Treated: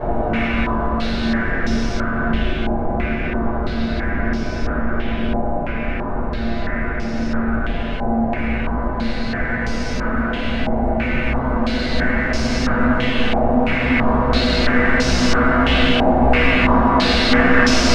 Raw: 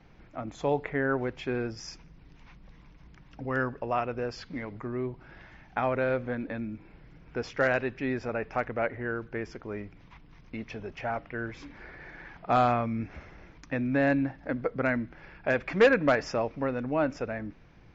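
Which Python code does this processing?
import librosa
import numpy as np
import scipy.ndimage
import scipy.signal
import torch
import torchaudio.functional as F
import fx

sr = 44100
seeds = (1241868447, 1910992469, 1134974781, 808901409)

p1 = fx.octave_divider(x, sr, octaves=2, level_db=-6.0)
p2 = fx.dmg_buzz(p1, sr, base_hz=100.0, harmonics=26, level_db=-51.0, tilt_db=-3, odd_only=False)
p3 = (np.mod(10.0 ** (22.0 / 20.0) * p2 + 1.0, 2.0) - 1.0) / 10.0 ** (22.0 / 20.0)
p4 = p3 + fx.echo_opening(p3, sr, ms=548, hz=400, octaves=1, feedback_pct=70, wet_db=-3, dry=0)
p5 = fx.paulstretch(p4, sr, seeds[0], factor=20.0, window_s=1.0, from_s=13.01)
p6 = fx.room_shoebox(p5, sr, seeds[1], volume_m3=150.0, walls='furnished', distance_m=5.2)
p7 = fx.filter_held_lowpass(p6, sr, hz=3.0, low_hz=790.0, high_hz=5500.0)
y = p7 * librosa.db_to_amplitude(-1.0)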